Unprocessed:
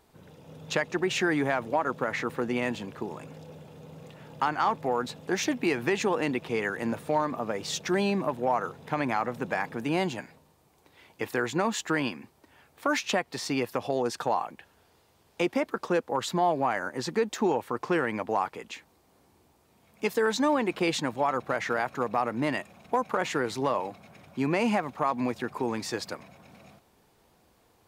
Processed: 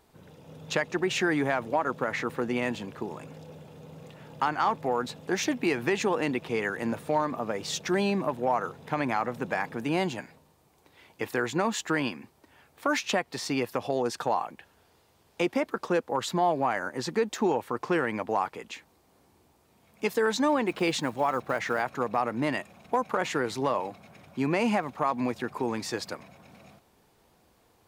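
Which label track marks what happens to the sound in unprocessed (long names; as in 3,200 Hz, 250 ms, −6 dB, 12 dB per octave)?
20.680000	21.830000	one scale factor per block 7 bits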